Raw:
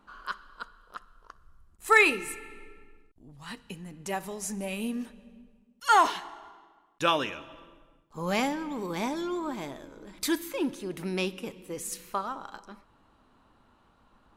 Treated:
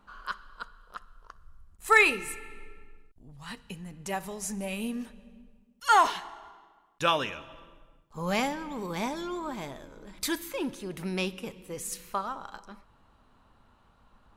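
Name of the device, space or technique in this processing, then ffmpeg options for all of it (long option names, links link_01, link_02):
low shelf boost with a cut just above: -af "lowshelf=frequency=110:gain=5.5,equalizer=frequency=310:width_type=o:width=0.63:gain=-5.5"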